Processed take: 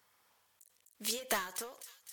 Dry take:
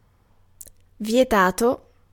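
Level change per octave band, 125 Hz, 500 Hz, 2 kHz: -27.5, -23.0, -15.5 dB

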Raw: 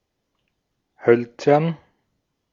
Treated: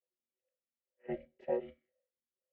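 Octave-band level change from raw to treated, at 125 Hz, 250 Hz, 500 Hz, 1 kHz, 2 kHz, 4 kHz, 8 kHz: -30.5 dB, -22.5 dB, -20.0 dB, -24.5 dB, -27.0 dB, under -25 dB, n/a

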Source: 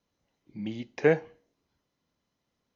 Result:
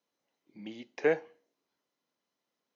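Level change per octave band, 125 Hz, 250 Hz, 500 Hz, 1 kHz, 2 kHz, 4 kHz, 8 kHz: -15.0 dB, -7.5 dB, -4.0 dB, -3.5 dB, -3.5 dB, -3.5 dB, n/a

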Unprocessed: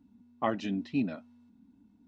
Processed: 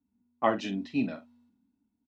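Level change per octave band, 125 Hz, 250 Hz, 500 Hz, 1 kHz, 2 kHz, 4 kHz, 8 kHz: -1.5 dB, +0.5 dB, +4.5 dB, +4.5 dB, +4.0 dB, +4.0 dB, n/a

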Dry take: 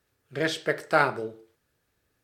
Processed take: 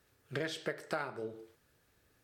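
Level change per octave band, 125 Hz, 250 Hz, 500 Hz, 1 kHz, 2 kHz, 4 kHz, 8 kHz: -8.5, -10.0, -11.5, -16.0, -13.5, -9.5, -9.0 dB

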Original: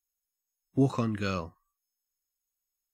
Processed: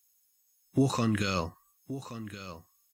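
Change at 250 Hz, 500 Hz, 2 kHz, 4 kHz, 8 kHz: +0.5, 0.0, +3.5, +7.0, +10.5 dB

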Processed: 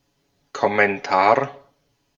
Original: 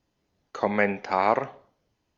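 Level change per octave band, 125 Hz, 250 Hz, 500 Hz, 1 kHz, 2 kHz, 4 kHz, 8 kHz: +3.5 dB, +2.0 dB, +6.0 dB, +6.5 dB, +8.0 dB, +10.0 dB, n/a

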